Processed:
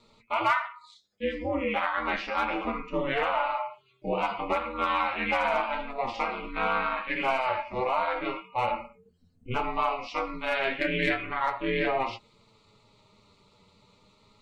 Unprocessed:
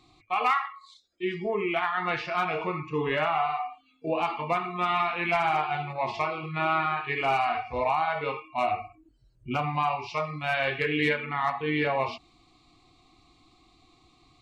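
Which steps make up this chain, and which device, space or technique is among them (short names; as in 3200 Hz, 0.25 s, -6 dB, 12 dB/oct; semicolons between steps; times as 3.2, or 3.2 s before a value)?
alien voice (ring modulator 130 Hz; flange 0.33 Hz, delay 8.6 ms, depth 1.8 ms, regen +35%); gain +6 dB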